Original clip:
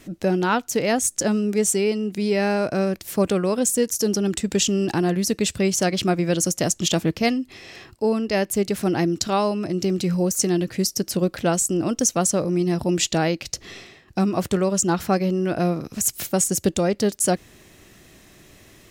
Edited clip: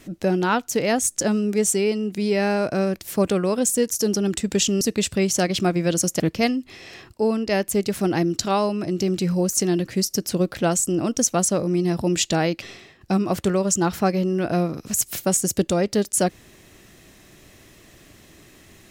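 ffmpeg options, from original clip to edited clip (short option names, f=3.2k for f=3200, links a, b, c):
-filter_complex "[0:a]asplit=4[a][b][c][d];[a]atrim=end=4.812[e];[b]atrim=start=5.238:end=6.632[f];[c]atrim=start=7.018:end=13.442[g];[d]atrim=start=13.688[h];[e][f]acrossfade=d=0.004:c1=hsin:c2=hsin[i];[i][g]acrossfade=d=0.004:c1=hsin:c2=hsin[j];[j][h]acrossfade=d=0.004:c1=hsin:c2=hsin"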